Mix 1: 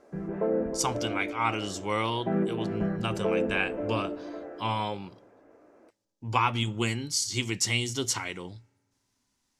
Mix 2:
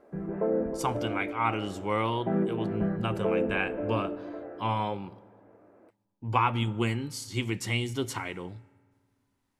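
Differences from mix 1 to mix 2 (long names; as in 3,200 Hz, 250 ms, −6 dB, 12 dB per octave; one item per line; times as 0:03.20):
speech: send +10.5 dB
master: add parametric band 6,000 Hz −15 dB 1.5 octaves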